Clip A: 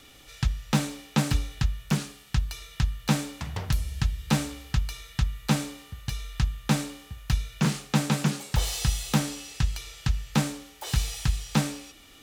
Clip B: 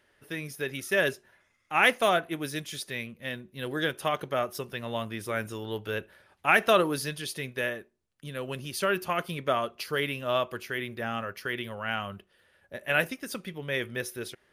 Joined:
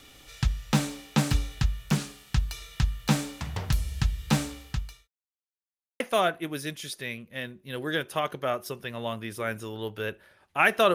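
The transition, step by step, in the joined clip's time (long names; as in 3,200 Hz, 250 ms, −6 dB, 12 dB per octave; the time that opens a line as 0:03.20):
clip A
0:04.20–0:05.08: fade out equal-power
0:05.08–0:06.00: silence
0:06.00: continue with clip B from 0:01.89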